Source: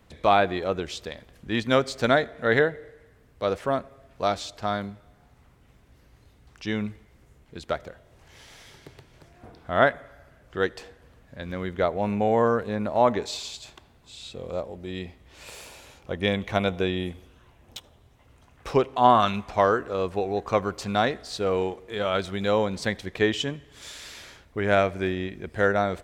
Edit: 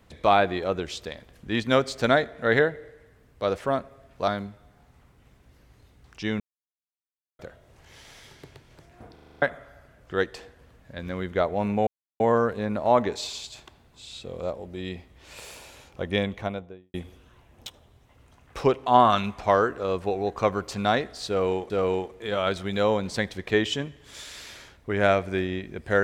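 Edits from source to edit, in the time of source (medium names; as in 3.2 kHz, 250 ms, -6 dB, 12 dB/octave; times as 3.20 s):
4.28–4.71 s: delete
6.83–7.82 s: mute
9.57 s: stutter in place 0.04 s, 7 plays
12.30 s: insert silence 0.33 s
16.15–17.04 s: studio fade out
21.38–21.80 s: loop, 2 plays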